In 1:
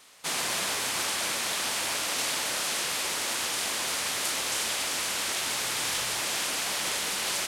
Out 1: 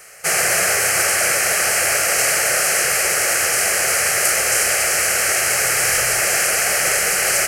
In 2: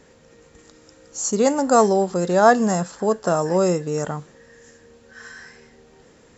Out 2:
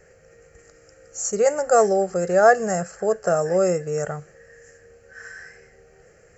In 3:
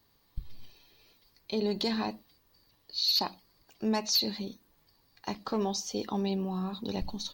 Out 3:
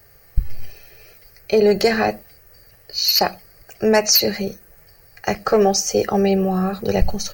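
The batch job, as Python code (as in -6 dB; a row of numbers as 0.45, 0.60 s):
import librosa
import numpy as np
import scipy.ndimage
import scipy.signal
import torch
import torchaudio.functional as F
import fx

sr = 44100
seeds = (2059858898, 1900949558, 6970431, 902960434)

y = fx.fixed_phaser(x, sr, hz=980.0, stages=6)
y = librosa.util.normalize(y) * 10.0 ** (-3 / 20.0)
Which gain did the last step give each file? +16.0, +1.5, +20.0 dB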